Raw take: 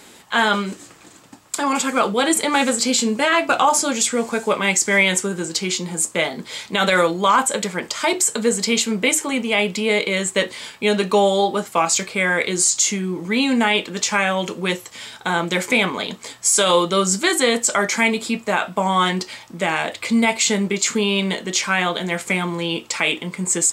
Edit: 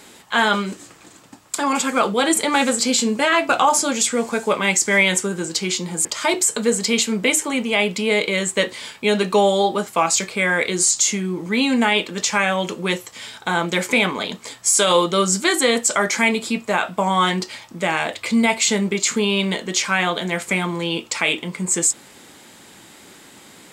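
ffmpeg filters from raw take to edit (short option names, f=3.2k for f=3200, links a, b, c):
-filter_complex "[0:a]asplit=2[a][b];[a]atrim=end=6.052[c];[b]atrim=start=7.838[d];[c][d]acrossfade=d=0.004:c1=hsin:c2=hsin"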